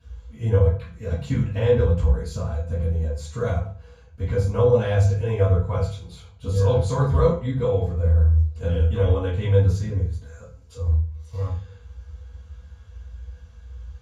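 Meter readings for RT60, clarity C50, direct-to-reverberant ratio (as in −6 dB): 0.40 s, 5.5 dB, −14.0 dB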